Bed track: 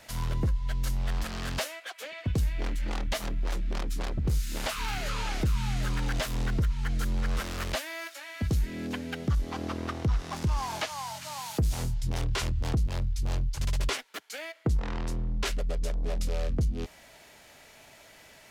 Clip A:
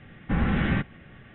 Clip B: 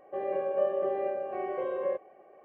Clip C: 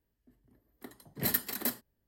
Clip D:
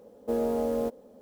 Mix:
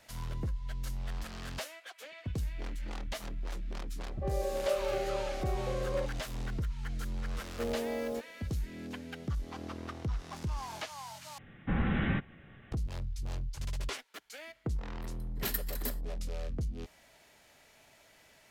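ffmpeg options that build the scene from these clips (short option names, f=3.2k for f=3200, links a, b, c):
-filter_complex "[0:a]volume=-8dB,asplit=2[a][b];[a]atrim=end=11.384[c];[1:a]atrim=end=1.34,asetpts=PTS-STARTPTS,volume=-6dB[d];[b]atrim=start=12.716[e];[2:a]atrim=end=2.44,asetpts=PTS-STARTPTS,volume=-4dB,afade=t=in:d=0.004:c=hsin,afade=t=out:st=2.436:d=0.004:c=hsin,adelay=180369S[f];[4:a]atrim=end=1.21,asetpts=PTS-STARTPTS,volume=-7.5dB,afade=t=in:d=0.004:c=hsin,afade=t=out:st=1.206:d=0.004:c=hsin,adelay=7310[g];[3:a]atrim=end=2.07,asetpts=PTS-STARTPTS,volume=-6dB,afade=t=in:d=0.004:c=hsin,afade=t=out:st=2.066:d=0.004:c=hsin,adelay=14200[h];[c][d]acrossfade=d=0.004:c1=hsin:c2=hsin[i];[i][e]acrossfade=d=0.004:c1=hsin:c2=hsin[j];[j][f][g][h]amix=inputs=4:normalize=0"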